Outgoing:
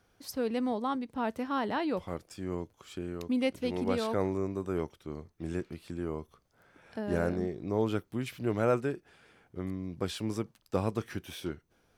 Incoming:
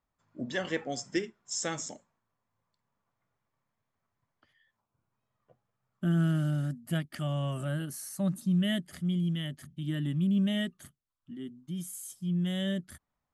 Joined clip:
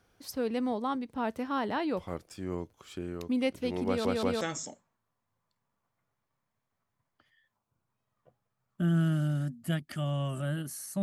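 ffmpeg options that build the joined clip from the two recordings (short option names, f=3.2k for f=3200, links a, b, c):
-filter_complex "[0:a]apad=whole_dur=11.02,atrim=end=11.02,asplit=3[a][b][c];[a]atrim=end=4.052[d];[b]atrim=start=3.868:end=4.052[e];[c]atrim=start=3.868:end=4.052[f];[1:a]atrim=start=1.638:end=8.25[g];[d][e]acrossfade=d=0.004:c1=hsin:c2=hsin[h];[h][f]acrossfade=d=0.004:c1=hsin:c2=hsin[i];[i][g]acrossfade=d=0.004:c1=hsin:c2=hsin"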